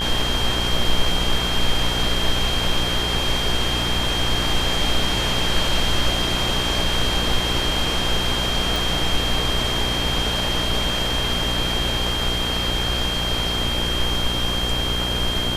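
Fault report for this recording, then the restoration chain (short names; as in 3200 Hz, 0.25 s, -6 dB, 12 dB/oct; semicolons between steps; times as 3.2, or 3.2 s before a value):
buzz 60 Hz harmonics 31 -27 dBFS
tone 3200 Hz -24 dBFS
8.76 pop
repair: de-click; de-hum 60 Hz, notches 31; notch 3200 Hz, Q 30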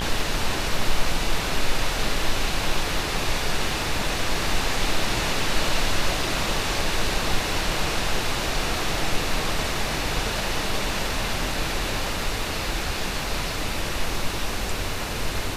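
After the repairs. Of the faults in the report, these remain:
8.76 pop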